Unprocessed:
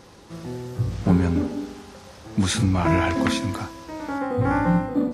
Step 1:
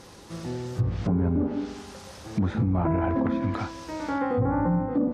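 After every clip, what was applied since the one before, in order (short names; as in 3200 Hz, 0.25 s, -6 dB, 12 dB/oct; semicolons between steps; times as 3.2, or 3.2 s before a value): high shelf 5500 Hz +6 dB; treble ducked by the level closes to 910 Hz, closed at -18 dBFS; limiter -16 dBFS, peak gain reduction 9.5 dB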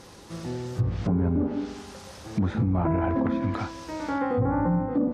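nothing audible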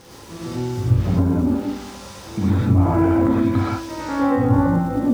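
crackle 280/s -38 dBFS; non-linear reverb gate 0.14 s rising, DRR -5 dB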